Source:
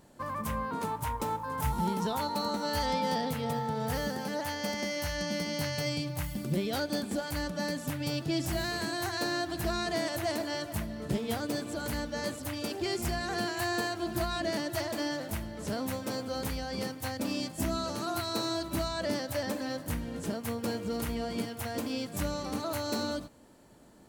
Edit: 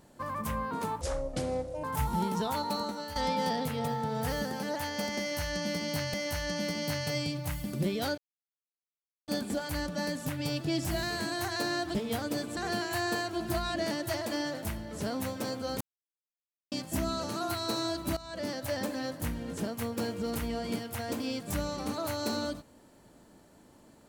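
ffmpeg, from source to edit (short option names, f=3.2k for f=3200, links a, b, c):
-filter_complex "[0:a]asplit=11[a][b][c][d][e][f][g][h][i][j][k];[a]atrim=end=1.014[l];[b]atrim=start=1.01:end=1.49,asetpts=PTS-STARTPTS,asetrate=25578,aresample=44100[m];[c]atrim=start=1.486:end=2.81,asetpts=PTS-STARTPTS,afade=t=out:st=0.884:d=0.44:silence=0.237137[n];[d]atrim=start=2.81:end=5.792,asetpts=PTS-STARTPTS,afade=t=in:d=0.004:c=hsin:silence=0.237137[o];[e]atrim=start=4.848:end=6.89,asetpts=PTS-STARTPTS,afade=t=out:st=2.038:d=0.004:c=hsin,apad=pad_dur=1.1[p];[f]atrim=start=6.89:end=9.562,asetpts=PTS-STARTPTS,afade=t=in:d=0.004:c=hsin[q];[g]atrim=start=11.128:end=11.752[r];[h]atrim=start=13.228:end=16.47,asetpts=PTS-STARTPTS,afade=t=out:st=3.238:d=0.004:c=hsin[s];[i]atrim=start=16.47:end=17.38,asetpts=PTS-STARTPTS,volume=0[t];[j]atrim=start=17.38:end=18.83,asetpts=PTS-STARTPTS,afade=t=in:d=0.004:c=hsin,afade=t=out:st=1.446:d=0.004:c=hsin:silence=0.149624[u];[k]atrim=start=18.83,asetpts=PTS-STARTPTS,afade=t=in:d=0.68:c=qsin:silence=0.149624[v];[l][m]acrossfade=d=0.004:c1=hsin:c2=hsin[w];[n][o]concat=n=2:v=0:a=1[x];[w][x]acrossfade=d=0.004:c1=hsin:c2=hsin[y];[p][q]concat=n=2:v=0:a=1[z];[y][z]acrossfade=d=0.004:c1=hsin:c2=hsin[aa];[aa][r]acrossfade=d=0.004:c1=hsin:c2=hsin[ab];[s][t][u][v]concat=n=4:v=0:a=1[ac];[ab][ac]acrossfade=d=0.004:c1=hsin:c2=hsin"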